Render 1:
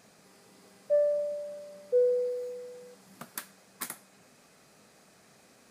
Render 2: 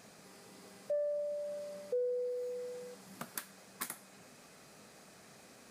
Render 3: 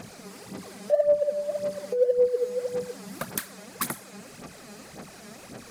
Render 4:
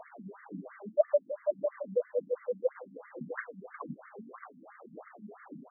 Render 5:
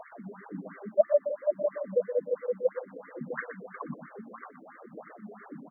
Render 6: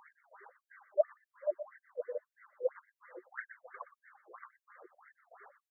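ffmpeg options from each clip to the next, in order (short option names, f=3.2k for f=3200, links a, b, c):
-af "acompressor=threshold=-41dB:ratio=2.5,volume=2dB"
-af "lowshelf=f=280:g=5.5,aphaser=in_gain=1:out_gain=1:delay=4.9:decay=0.66:speed=1.8:type=sinusoidal,volume=8.5dB"
-af "aecho=1:1:532|1064|1596|2128:0.224|0.0873|0.0341|0.0133,flanger=delay=6.2:depth=4.1:regen=40:speed=1.8:shape=triangular,afftfilt=real='re*between(b*sr/1024,200*pow(1600/200,0.5+0.5*sin(2*PI*3*pts/sr))/1.41,200*pow(1600/200,0.5+0.5*sin(2*PI*3*pts/sr))*1.41)':imag='im*between(b*sr/1024,200*pow(1600/200,0.5+0.5*sin(2*PI*3*pts/sr))/1.41,200*pow(1600/200,0.5+0.5*sin(2*PI*3*pts/sr))*1.41)':win_size=1024:overlap=0.75,volume=5.5dB"
-af "aecho=1:1:122:0.299,volume=3dB"
-af "afftfilt=real='re*gte(b*sr/1024,340*pow(1600/340,0.5+0.5*sin(2*PI*1.8*pts/sr)))':imag='im*gte(b*sr/1024,340*pow(1600/340,0.5+0.5*sin(2*PI*1.8*pts/sr)))':win_size=1024:overlap=0.75,volume=-6dB"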